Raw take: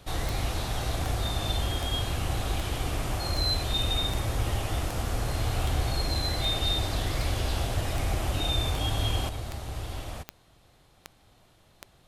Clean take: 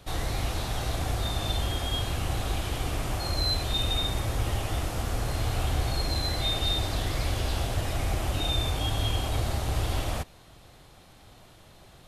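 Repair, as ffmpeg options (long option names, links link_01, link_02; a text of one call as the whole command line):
ffmpeg -i in.wav -af "adeclick=threshold=4,asetnsamples=nb_out_samples=441:pad=0,asendcmd='9.29 volume volume 7.5dB',volume=0dB" out.wav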